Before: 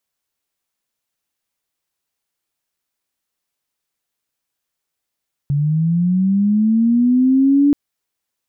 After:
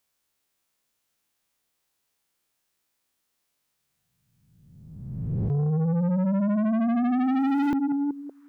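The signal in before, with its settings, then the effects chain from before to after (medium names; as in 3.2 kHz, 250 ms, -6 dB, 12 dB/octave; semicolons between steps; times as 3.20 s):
sweep linear 140 Hz -> 290 Hz -14 dBFS -> -9 dBFS 2.23 s
reverse spectral sustain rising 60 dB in 1.37 s; on a send: repeats whose band climbs or falls 188 ms, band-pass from 210 Hz, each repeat 0.7 oct, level -7 dB; on the sum: saturation -22 dBFS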